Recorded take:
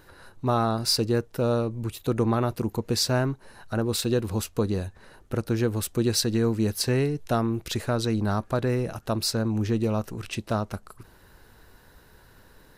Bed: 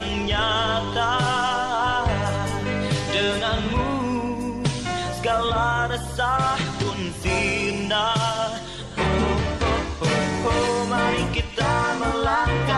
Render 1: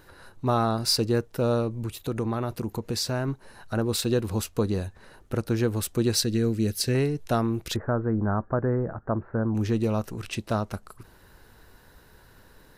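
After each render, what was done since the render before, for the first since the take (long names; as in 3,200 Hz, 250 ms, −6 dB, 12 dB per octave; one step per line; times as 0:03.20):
0:01.82–0:03.28: downward compressor 2 to 1, threshold −27 dBFS
0:06.23–0:06.95: parametric band 950 Hz −14 dB 0.86 octaves
0:07.76–0:09.55: Butterworth low-pass 1,700 Hz 48 dB per octave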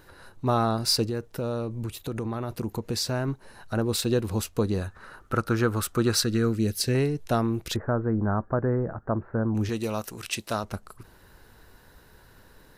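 0:01.05–0:02.58: downward compressor 3 to 1, threshold −27 dBFS
0:04.81–0:06.56: parametric band 1,300 Hz +14.5 dB 0.56 octaves
0:09.69–0:10.64: spectral tilt +2.5 dB per octave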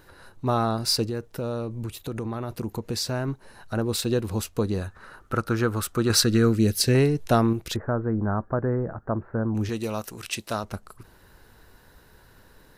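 0:06.10–0:07.53: clip gain +4.5 dB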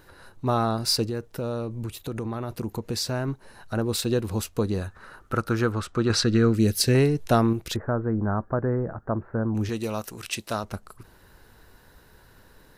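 0:05.72–0:06.54: high-frequency loss of the air 87 metres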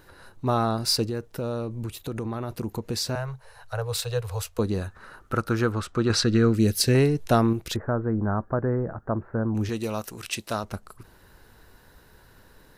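0:03.15–0:04.59: Chebyshev band-stop filter 130–450 Hz, order 4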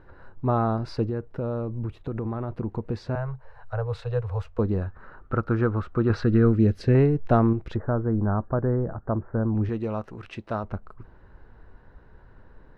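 low-pass filter 1,500 Hz 12 dB per octave
low-shelf EQ 72 Hz +8.5 dB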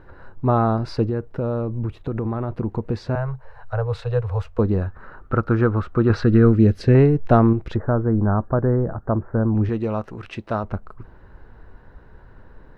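level +5 dB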